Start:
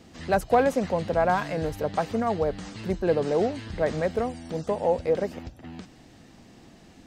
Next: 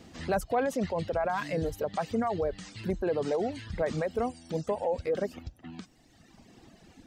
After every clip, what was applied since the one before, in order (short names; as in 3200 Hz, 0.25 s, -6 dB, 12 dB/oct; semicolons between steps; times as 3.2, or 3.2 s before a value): limiter -19 dBFS, peak gain reduction 9 dB; reverb removal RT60 1.8 s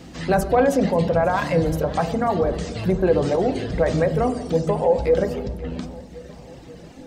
on a send at -8 dB: reverb RT60 1.2 s, pre-delay 3 ms; on the sum: warbling echo 0.537 s, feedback 62%, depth 78 cents, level -19.5 dB; gain +8.5 dB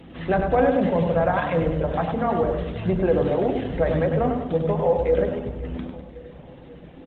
downsampling 8000 Hz; feedback echo 0.1 s, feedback 44%, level -6 dB; gain -2.5 dB; Opus 16 kbps 48000 Hz